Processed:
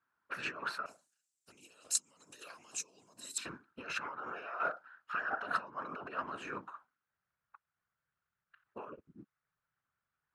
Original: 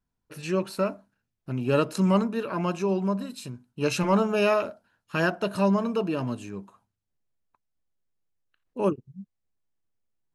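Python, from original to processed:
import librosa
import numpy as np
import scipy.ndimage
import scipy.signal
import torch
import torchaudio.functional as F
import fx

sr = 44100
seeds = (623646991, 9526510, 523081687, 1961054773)

y = fx.over_compress(x, sr, threshold_db=-34.0, ratio=-1.0)
y = fx.whisperise(y, sr, seeds[0])
y = fx.bandpass_q(y, sr, hz=fx.steps((0.0, 1400.0), (0.86, 7600.0), (3.38, 1400.0)), q=3.7)
y = y * 10.0 ** (8.5 / 20.0)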